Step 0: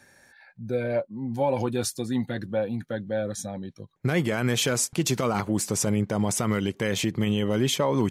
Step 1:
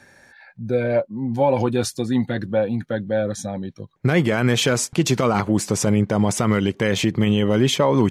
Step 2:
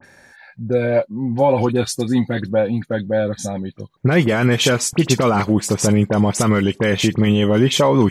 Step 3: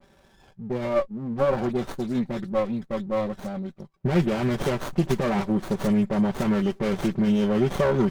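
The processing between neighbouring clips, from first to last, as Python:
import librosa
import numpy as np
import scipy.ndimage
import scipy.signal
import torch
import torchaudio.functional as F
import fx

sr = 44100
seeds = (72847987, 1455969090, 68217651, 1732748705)

y1 = fx.high_shelf(x, sr, hz=8000.0, db=-11.5)
y1 = y1 * librosa.db_to_amplitude(6.5)
y2 = fx.dispersion(y1, sr, late='highs', ms=43.0, hz=2800.0)
y2 = y2 * librosa.db_to_amplitude(3.0)
y3 = y2 + 0.73 * np.pad(y2, (int(5.2 * sr / 1000.0), 0))[:len(y2)]
y3 = fx.running_max(y3, sr, window=17)
y3 = y3 * librosa.db_to_amplitude(-9.0)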